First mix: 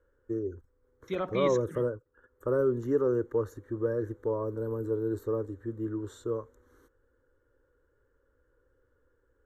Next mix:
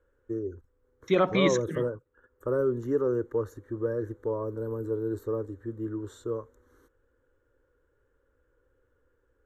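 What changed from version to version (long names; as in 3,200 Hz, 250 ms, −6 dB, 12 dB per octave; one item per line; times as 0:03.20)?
second voice +9.5 dB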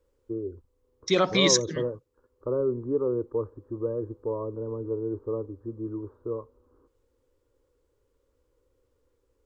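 first voice: add Chebyshev low-pass filter 1,100 Hz, order 4
master: remove moving average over 9 samples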